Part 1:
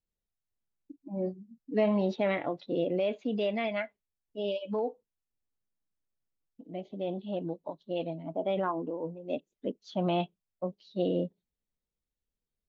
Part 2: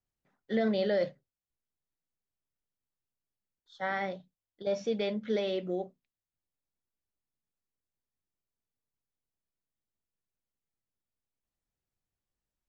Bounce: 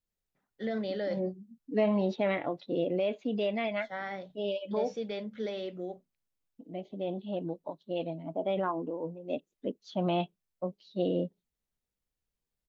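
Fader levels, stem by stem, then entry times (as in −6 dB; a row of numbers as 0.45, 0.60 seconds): −0.5, −5.0 decibels; 0.00, 0.10 seconds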